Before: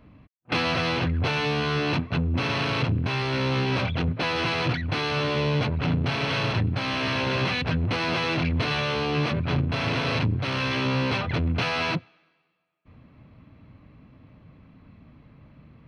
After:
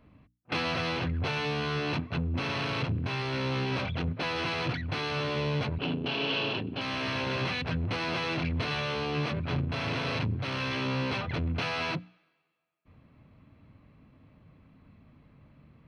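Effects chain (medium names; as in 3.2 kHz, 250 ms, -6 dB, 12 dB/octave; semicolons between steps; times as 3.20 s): 5.78–6.81 s: cabinet simulation 190–5100 Hz, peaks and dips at 270 Hz +5 dB, 400 Hz +6 dB, 1.3 kHz -4 dB, 2 kHz -8 dB, 2.9 kHz +10 dB; hum notches 60/120/180/240/300 Hz; trim -5.5 dB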